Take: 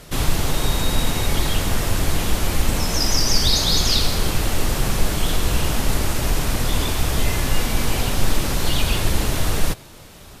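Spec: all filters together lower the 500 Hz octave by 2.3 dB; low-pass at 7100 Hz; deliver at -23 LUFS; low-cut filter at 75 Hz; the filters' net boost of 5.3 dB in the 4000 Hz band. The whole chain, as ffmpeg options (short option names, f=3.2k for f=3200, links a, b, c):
-af "highpass=75,lowpass=7.1k,equalizer=f=500:t=o:g=-3,equalizer=f=4k:t=o:g=7,volume=-3dB"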